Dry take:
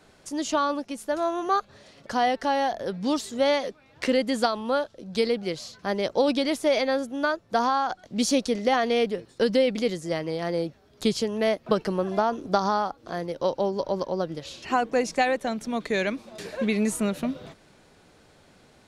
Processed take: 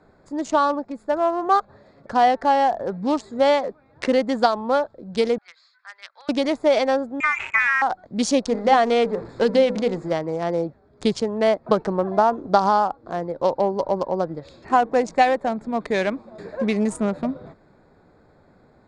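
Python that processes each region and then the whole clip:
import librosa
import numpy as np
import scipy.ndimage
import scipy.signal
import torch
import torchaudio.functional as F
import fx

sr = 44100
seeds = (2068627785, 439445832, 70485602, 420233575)

y = fx.chain(x, sr, fx.highpass(hz=1500.0, slope=24),
    fx.air_absorb(metres=150.0), at=(5.38, 6.29))
y = fx.chain(y, sr, fx.freq_invert(carrier_hz=2700),
    fx.sustainer(db_per_s=51.0), at=(7.2, 7.82))
y = fx.chain(y, sr, fx.zero_step(step_db=-36.0),
    fx.lowpass(hz=7800.0, slope=12),
    fx.hum_notches(base_hz=50, count=10), at=(8.47, 10.13))
y = fx.wiener(y, sr, points=15)
y = scipy.signal.sosfilt(scipy.signal.butter(12, 9800.0, 'lowpass', fs=sr, output='sos'), y)
y = fx.dynamic_eq(y, sr, hz=840.0, q=1.4, threshold_db=-39.0, ratio=4.0, max_db=6)
y = y * 10.0 ** (2.5 / 20.0)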